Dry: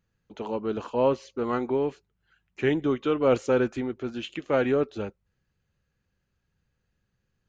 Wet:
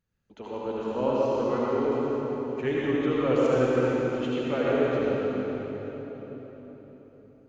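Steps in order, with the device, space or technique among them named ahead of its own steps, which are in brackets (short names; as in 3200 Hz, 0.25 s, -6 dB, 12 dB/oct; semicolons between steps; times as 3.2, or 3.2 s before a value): cathedral (reverb RT60 4.5 s, pre-delay 66 ms, DRR -6.5 dB); gain -7 dB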